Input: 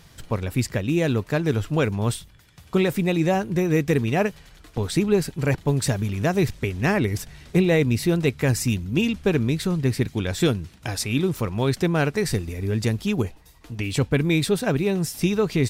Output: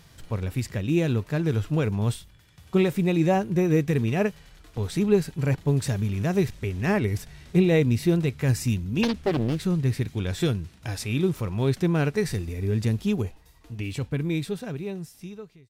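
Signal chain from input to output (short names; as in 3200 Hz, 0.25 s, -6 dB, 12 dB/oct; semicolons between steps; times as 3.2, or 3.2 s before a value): ending faded out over 2.46 s; harmonic-percussive split percussive -8 dB; 9.03–9.61 Doppler distortion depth 0.94 ms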